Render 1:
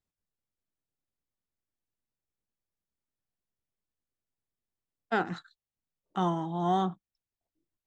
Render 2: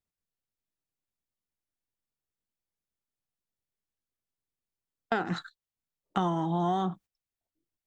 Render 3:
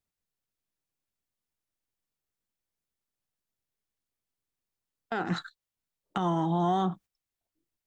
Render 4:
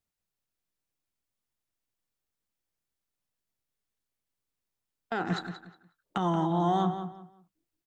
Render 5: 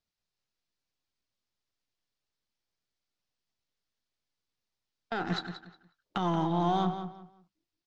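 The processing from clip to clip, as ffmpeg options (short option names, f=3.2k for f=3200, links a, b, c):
-filter_complex "[0:a]agate=range=-15dB:threshold=-51dB:ratio=16:detection=peak,asplit=2[a][b];[b]alimiter=level_in=1.5dB:limit=-24dB:level=0:latency=1,volume=-1.5dB,volume=-1.5dB[c];[a][c]amix=inputs=2:normalize=0,acompressor=threshold=-33dB:ratio=6,volume=7dB"
-af "alimiter=limit=-20.5dB:level=0:latency=1:release=125,volume=2dB"
-filter_complex "[0:a]asplit=2[a][b];[b]adelay=180,lowpass=f=3.6k:p=1,volume=-9dB,asplit=2[c][d];[d]adelay=180,lowpass=f=3.6k:p=1,volume=0.26,asplit=2[e][f];[f]adelay=180,lowpass=f=3.6k:p=1,volume=0.26[g];[a][c][e][g]amix=inputs=4:normalize=0"
-af "aeval=exprs='if(lt(val(0),0),0.708*val(0),val(0))':c=same,lowpass=f=4.9k:t=q:w=1.9" -ar 32000 -c:a libmp3lame -b:a 56k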